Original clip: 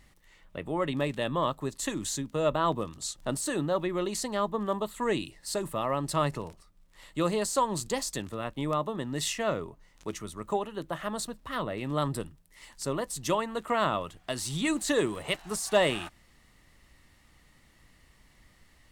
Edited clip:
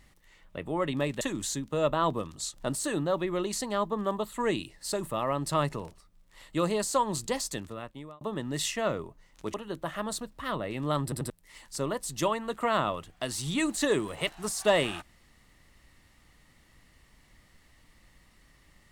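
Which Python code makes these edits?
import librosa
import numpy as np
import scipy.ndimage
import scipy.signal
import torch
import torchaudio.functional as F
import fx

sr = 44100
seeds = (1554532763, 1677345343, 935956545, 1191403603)

y = fx.edit(x, sr, fx.cut(start_s=1.21, length_s=0.62),
    fx.fade_out_span(start_s=8.1, length_s=0.73),
    fx.cut(start_s=10.16, length_s=0.45),
    fx.stutter_over(start_s=12.1, slice_s=0.09, count=3), tone=tone)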